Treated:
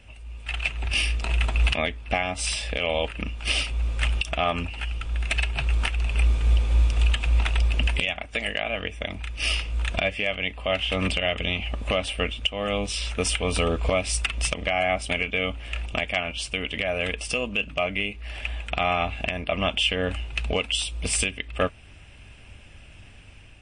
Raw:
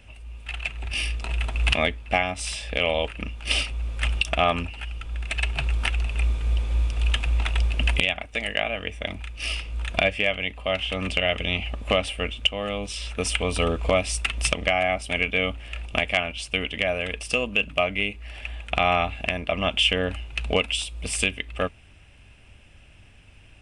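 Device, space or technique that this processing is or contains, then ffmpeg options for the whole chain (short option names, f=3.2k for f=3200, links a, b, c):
low-bitrate web radio: -af "dynaudnorm=f=180:g=5:m=4.5dB,alimiter=limit=-11.5dB:level=0:latency=1:release=280" -ar 22050 -c:a libmp3lame -b:a 40k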